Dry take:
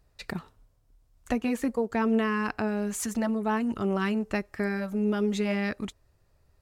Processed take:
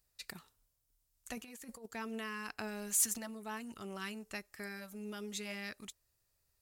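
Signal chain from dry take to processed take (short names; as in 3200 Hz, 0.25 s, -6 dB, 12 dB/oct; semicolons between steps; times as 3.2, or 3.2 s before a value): pre-emphasis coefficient 0.9; 1.37–1.86 negative-ratio compressor -49 dBFS, ratio -0.5; 2.54–3.18 sample leveller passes 1; gain +1 dB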